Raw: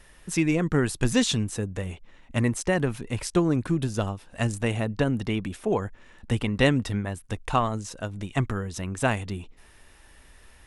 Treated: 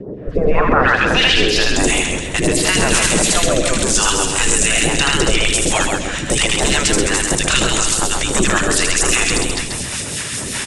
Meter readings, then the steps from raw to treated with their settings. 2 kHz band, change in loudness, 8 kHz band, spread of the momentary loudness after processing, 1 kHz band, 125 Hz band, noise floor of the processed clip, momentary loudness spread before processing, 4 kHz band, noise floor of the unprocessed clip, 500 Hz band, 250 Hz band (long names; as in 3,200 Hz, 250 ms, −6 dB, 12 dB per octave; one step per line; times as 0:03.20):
+16.5 dB, +12.0 dB, +22.0 dB, 7 LU, +12.5 dB, +3.0 dB, −25 dBFS, 10 LU, +19.5 dB, −54 dBFS, +10.0 dB, +5.5 dB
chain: gate on every frequency bin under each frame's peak −15 dB weak
low-shelf EQ 330 Hz +4.5 dB
in parallel at 0 dB: downward compressor, threshold −46 dBFS, peak gain reduction 20.5 dB
on the sum: soft clipping −27.5 dBFS, distortion −10 dB
low-pass filter sweep 420 Hz → 8,100 Hz, 0:00.07–0:01.84
on a send: loudspeakers that aren't time-aligned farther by 27 metres −3 dB, 98 metres −11 dB
on the sum: rotating-speaker cabinet horn 0.9 Hz, later 5 Hz, at 0:04.91
all-pass phaser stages 2, 2.9 Hz, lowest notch 260–2,800 Hz
boost into a limiter +30.5 dB
feedback echo with a swinging delay time 134 ms, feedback 31%, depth 61 cents, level −5 dB
level −4 dB